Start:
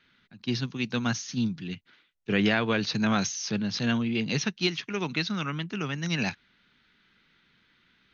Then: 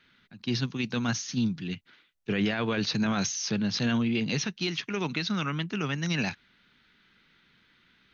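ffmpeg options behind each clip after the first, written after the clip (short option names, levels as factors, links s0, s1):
-af "alimiter=limit=0.0944:level=0:latency=1:release=28,volume=1.19"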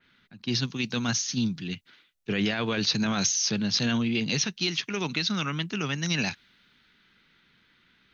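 -af "adynamicequalizer=threshold=0.00501:dfrequency=2900:dqfactor=0.7:tfrequency=2900:tqfactor=0.7:attack=5:release=100:ratio=0.375:range=3.5:mode=boostabove:tftype=highshelf"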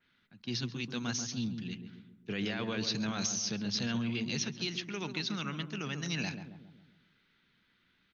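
-filter_complex "[0:a]asplit=2[s0][s1];[s1]adelay=136,lowpass=f=870:p=1,volume=0.501,asplit=2[s2][s3];[s3]adelay=136,lowpass=f=870:p=1,volume=0.55,asplit=2[s4][s5];[s5]adelay=136,lowpass=f=870:p=1,volume=0.55,asplit=2[s6][s7];[s7]adelay=136,lowpass=f=870:p=1,volume=0.55,asplit=2[s8][s9];[s9]adelay=136,lowpass=f=870:p=1,volume=0.55,asplit=2[s10][s11];[s11]adelay=136,lowpass=f=870:p=1,volume=0.55,asplit=2[s12][s13];[s13]adelay=136,lowpass=f=870:p=1,volume=0.55[s14];[s0][s2][s4][s6][s8][s10][s12][s14]amix=inputs=8:normalize=0,volume=0.376"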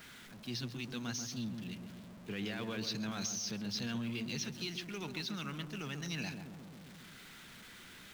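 -af "aeval=exprs='val(0)+0.5*0.00794*sgn(val(0))':c=same,volume=0.501"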